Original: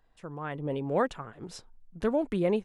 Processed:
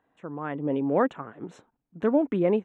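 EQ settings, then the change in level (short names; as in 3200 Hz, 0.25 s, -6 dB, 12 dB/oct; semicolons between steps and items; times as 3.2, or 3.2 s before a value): running mean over 9 samples; HPF 160 Hz 12 dB/oct; bell 280 Hz +6.5 dB 0.31 oct; +3.5 dB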